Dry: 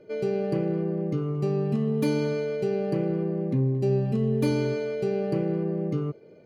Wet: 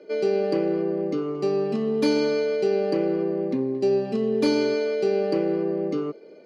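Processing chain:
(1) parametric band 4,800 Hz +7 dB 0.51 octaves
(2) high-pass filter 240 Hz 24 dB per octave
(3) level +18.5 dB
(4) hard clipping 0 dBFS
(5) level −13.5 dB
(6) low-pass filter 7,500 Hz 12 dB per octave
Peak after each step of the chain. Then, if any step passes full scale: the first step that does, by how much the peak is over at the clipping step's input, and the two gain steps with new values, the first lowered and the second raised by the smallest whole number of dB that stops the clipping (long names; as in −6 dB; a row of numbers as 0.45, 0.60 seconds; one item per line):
−13.0, −14.5, +4.0, 0.0, −13.5, −13.5 dBFS
step 3, 4.0 dB
step 3 +14.5 dB, step 5 −9.5 dB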